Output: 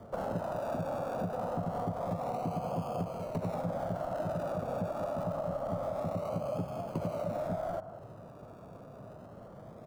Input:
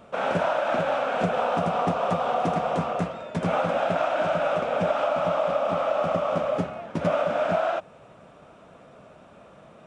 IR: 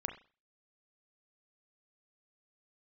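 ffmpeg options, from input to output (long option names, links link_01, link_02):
-filter_complex "[0:a]acrossover=split=230|460|970[link_01][link_02][link_03][link_04];[link_01]acompressor=threshold=-34dB:ratio=4[link_05];[link_02]acompressor=threshold=-49dB:ratio=4[link_06];[link_03]acompressor=threshold=-36dB:ratio=4[link_07];[link_04]acompressor=threshold=-44dB:ratio=4[link_08];[link_05][link_06][link_07][link_08]amix=inputs=4:normalize=0,equalizer=frequency=110:width_type=o:width=0.66:gain=10,acrossover=split=1300[link_09][link_10];[link_09]aecho=1:1:192:0.237[link_11];[link_10]acrusher=samples=33:mix=1:aa=0.000001:lfo=1:lforange=19.8:lforate=0.26[link_12];[link_11][link_12]amix=inputs=2:normalize=0,acompressor=threshold=-30dB:ratio=6"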